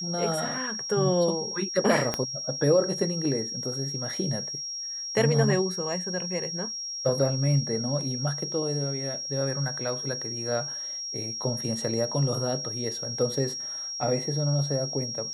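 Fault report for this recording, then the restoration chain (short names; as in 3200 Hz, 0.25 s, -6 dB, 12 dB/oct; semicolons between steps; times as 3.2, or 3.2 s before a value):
tone 5600 Hz -32 dBFS
2.14 pop -12 dBFS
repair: de-click; notch 5600 Hz, Q 30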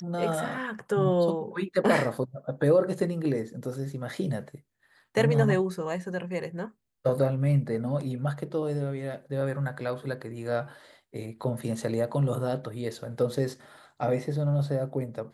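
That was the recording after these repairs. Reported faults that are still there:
2.14 pop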